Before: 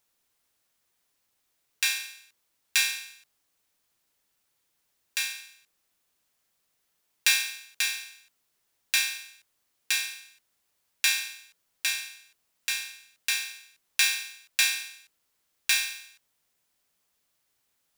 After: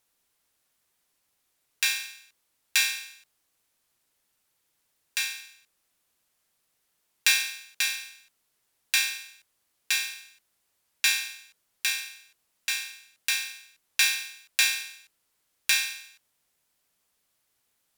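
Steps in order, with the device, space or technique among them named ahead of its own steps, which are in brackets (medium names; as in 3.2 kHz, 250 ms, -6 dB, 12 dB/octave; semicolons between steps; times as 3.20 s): crushed at another speed (playback speed 0.5×; sample-and-hold 3×; playback speed 2×); trim +1 dB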